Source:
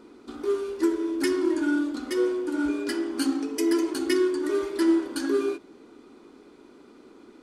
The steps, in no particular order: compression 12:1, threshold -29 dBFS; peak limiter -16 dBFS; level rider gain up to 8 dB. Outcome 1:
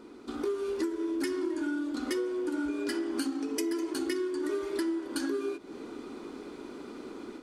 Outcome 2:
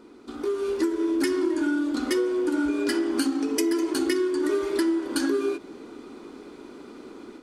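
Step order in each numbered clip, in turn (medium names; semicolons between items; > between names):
level rider > compression > peak limiter; compression > peak limiter > level rider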